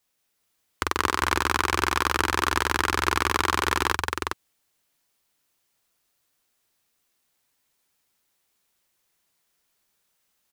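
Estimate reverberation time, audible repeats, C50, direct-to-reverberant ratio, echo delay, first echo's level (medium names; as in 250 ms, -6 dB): no reverb, 2, no reverb, no reverb, 169 ms, -4.5 dB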